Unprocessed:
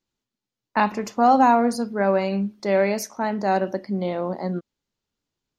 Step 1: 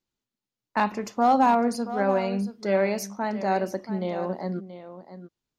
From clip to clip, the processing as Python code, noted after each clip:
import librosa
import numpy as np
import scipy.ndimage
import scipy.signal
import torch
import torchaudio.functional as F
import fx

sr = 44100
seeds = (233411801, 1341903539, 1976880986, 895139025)

y = np.clip(x, -10.0 ** (-8.0 / 20.0), 10.0 ** (-8.0 / 20.0))
y = y + 10.0 ** (-12.5 / 20.0) * np.pad(y, (int(679 * sr / 1000.0), 0))[:len(y)]
y = F.gain(torch.from_numpy(y), -3.5).numpy()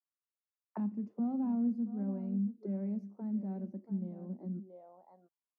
y = fx.low_shelf(x, sr, hz=210.0, db=10.5)
y = fx.auto_wah(y, sr, base_hz=220.0, top_hz=1200.0, q=4.3, full_db=-22.5, direction='down')
y = F.gain(torch.from_numpy(y), -7.5).numpy()